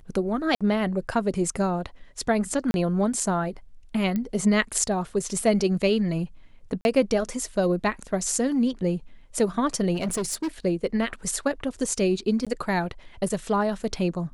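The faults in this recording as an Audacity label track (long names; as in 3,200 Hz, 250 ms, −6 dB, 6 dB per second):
0.550000	0.610000	drop-out 56 ms
2.710000	2.740000	drop-out 31 ms
4.160000	4.160000	click −16 dBFS
6.810000	6.850000	drop-out 41 ms
9.940000	10.480000	clipping −23.5 dBFS
12.450000	12.470000	drop-out 16 ms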